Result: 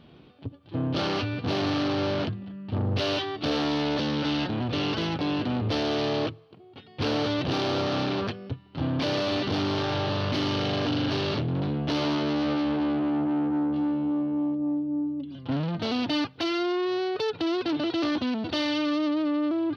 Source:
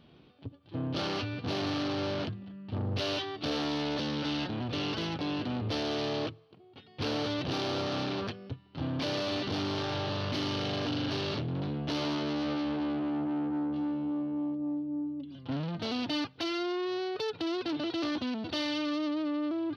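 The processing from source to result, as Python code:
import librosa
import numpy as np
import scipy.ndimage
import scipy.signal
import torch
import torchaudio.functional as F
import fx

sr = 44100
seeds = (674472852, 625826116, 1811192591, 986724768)

y = fx.high_shelf(x, sr, hz=5300.0, db=-6.5)
y = y * 10.0 ** (6.0 / 20.0)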